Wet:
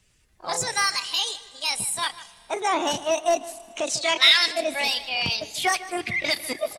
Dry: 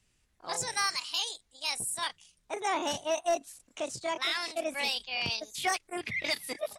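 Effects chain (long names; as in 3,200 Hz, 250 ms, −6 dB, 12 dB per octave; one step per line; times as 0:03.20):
spectral magnitudes quantised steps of 15 dB
camcorder AGC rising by 5.3 dB per second
0:03.87–0:04.46: meter weighting curve D
in parallel at −9 dB: soft clipping −24.5 dBFS, distortion −10 dB
on the sum: slap from a distant wall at 26 metres, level −16 dB
on a send at −20 dB: convolution reverb RT60 3.4 s, pre-delay 25 ms
on the sum: level +5 dB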